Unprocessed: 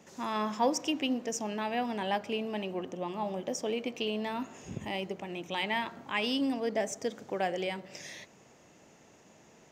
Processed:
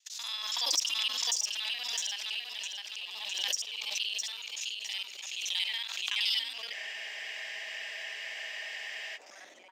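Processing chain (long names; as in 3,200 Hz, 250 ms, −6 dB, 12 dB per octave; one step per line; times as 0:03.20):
reversed piece by piece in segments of 47 ms
high-pass filter sweep 3,900 Hz → 300 Hz, 0:06.33–0:08.93
in parallel at −3.5 dB: soft clipping −31 dBFS, distortion −11 dB
on the sum: high-pass filter 150 Hz 6 dB per octave
noise gate −49 dBFS, range −52 dB
repeating echo 658 ms, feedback 32%, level −4 dB
frozen spectrum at 0:06.76, 2.39 s
background raised ahead of every attack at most 31 dB per second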